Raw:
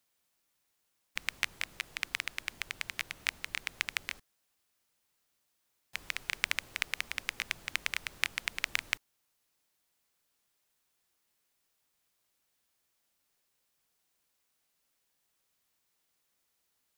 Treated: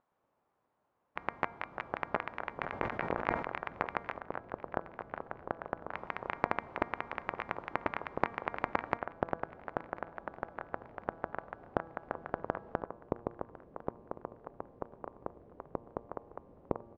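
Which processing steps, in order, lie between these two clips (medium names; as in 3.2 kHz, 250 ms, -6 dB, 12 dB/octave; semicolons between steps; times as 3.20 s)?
one-sided wavefolder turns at -17 dBFS; high-pass 150 Hz 6 dB/octave; de-hum 233.8 Hz, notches 10; vibrato 1.9 Hz 9 cents; resonant low-pass 1 kHz, resonance Q 1.8; ever faster or slower copies 120 ms, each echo -6 st, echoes 2; feedback delay 1052 ms, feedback 40%, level -19 dB; 2.61–3.48 s: decay stretcher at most 76 dB/s; trim +5.5 dB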